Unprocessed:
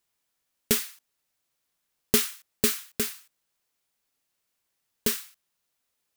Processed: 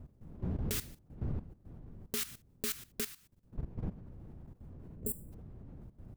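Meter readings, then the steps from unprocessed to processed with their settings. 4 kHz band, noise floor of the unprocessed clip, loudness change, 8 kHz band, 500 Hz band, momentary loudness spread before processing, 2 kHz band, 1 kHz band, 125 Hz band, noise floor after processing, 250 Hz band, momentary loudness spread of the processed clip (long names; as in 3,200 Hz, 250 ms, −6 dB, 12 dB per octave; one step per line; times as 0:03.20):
−12.5 dB, −79 dBFS, −12.5 dB, −12.0 dB, −12.5 dB, 10 LU, −12.0 dB, −10.0 dB, +4.5 dB, −65 dBFS, −7.5 dB, 16 LU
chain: wind on the microphone 150 Hz −34 dBFS
healed spectral selection 0:04.89–0:05.30, 680–7,200 Hz before
output level in coarse steps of 15 dB
level −4 dB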